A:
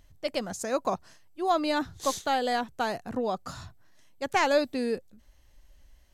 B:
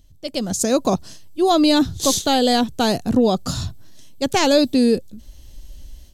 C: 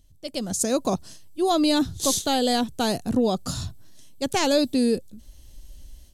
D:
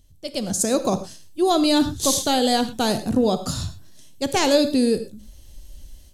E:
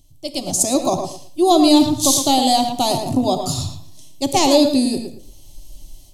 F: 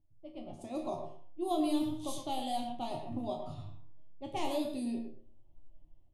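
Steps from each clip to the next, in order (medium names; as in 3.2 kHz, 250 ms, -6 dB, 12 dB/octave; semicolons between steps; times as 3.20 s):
level rider gain up to 13 dB; FFT filter 270 Hz 0 dB, 980 Hz -12 dB, 2 kHz -13 dB, 3.4 kHz -1 dB; in parallel at -0.5 dB: peak limiter -15 dBFS, peak gain reduction 7 dB
peaking EQ 9.8 kHz +6.5 dB 0.62 oct; trim -5.5 dB
gated-style reverb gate 140 ms flat, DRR 10 dB; trim +2.5 dB
static phaser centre 310 Hz, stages 8; tape echo 112 ms, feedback 23%, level -6 dB, low-pass 2.8 kHz; trim +6 dB
high-order bell 5.6 kHz -12 dB 1.1 oct; level-controlled noise filter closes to 970 Hz, open at -10.5 dBFS; chord resonator D#2 sus4, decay 0.29 s; trim -7.5 dB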